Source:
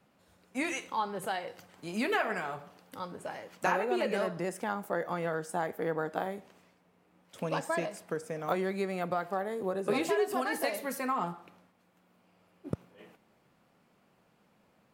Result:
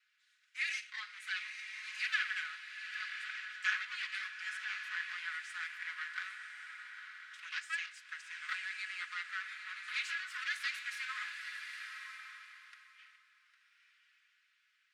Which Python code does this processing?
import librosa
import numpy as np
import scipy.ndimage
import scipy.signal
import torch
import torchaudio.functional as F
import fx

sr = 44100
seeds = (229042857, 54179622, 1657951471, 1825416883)

y = fx.lower_of_two(x, sr, delay_ms=4.7)
y = scipy.signal.sosfilt(scipy.signal.butter(8, 1500.0, 'highpass', fs=sr, output='sos'), y)
y = fx.air_absorb(y, sr, metres=99.0)
y = y + 10.0 ** (-15.0 / 20.0) * np.pad(y, (int(805 * sr / 1000.0), 0))[:len(y)]
y = fx.rev_bloom(y, sr, seeds[0], attack_ms=1130, drr_db=6.0)
y = F.gain(torch.from_numpy(y), 2.5).numpy()